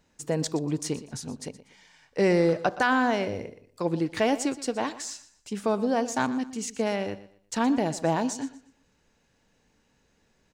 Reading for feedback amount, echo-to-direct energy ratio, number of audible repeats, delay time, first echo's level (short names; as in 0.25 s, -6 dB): 28%, -15.5 dB, 2, 0.12 s, -16.0 dB